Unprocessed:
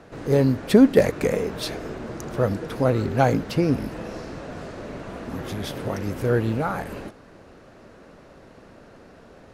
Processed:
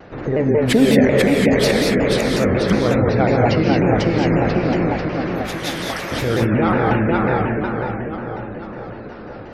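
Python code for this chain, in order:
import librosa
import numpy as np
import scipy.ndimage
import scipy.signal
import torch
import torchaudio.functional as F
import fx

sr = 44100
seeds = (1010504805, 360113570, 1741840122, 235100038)

p1 = fx.highpass(x, sr, hz=1100.0, slope=12, at=(4.85, 6.12))
p2 = p1 + fx.echo_feedback(p1, sr, ms=493, feedback_pct=56, wet_db=-3.5, dry=0)
p3 = fx.dynamic_eq(p2, sr, hz=2100.0, q=2.1, threshold_db=-46.0, ratio=4.0, max_db=6)
p4 = fx.over_compress(p3, sr, threshold_db=-25.0, ratio=-0.5)
p5 = p3 + (p4 * 10.0 ** (-0.5 / 20.0))
p6 = fx.spec_gate(p5, sr, threshold_db=-30, keep='strong')
p7 = fx.rev_gated(p6, sr, seeds[0], gate_ms=250, shape='rising', drr_db=0.0)
p8 = fx.vibrato_shape(p7, sr, shape='saw_down', rate_hz=5.5, depth_cents=160.0)
y = p8 * 10.0 ** (-1.5 / 20.0)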